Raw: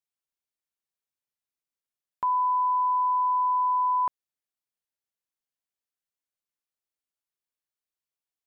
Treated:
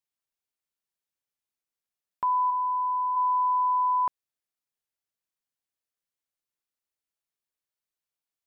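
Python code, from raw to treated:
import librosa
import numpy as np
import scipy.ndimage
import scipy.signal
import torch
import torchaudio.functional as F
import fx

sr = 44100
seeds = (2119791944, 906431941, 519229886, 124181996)

y = fx.lowpass(x, sr, hz=1000.0, slope=12, at=(2.5, 3.15), fade=0.02)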